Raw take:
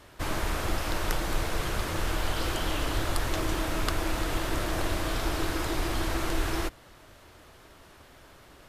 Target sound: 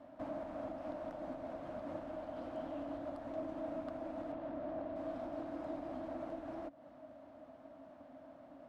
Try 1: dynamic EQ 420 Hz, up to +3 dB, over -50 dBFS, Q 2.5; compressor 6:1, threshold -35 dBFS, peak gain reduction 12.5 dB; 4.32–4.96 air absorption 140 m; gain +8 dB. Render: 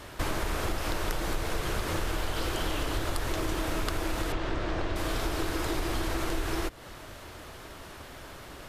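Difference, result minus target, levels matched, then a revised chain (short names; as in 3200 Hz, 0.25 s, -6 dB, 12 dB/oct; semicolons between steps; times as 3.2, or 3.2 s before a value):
500 Hz band -5.5 dB
dynamic EQ 420 Hz, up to +3 dB, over -50 dBFS, Q 2.5; compressor 6:1, threshold -35 dBFS, peak gain reduction 12.5 dB; double band-pass 410 Hz, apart 1.2 oct; 4.32–4.96 air absorption 140 m; gain +8 dB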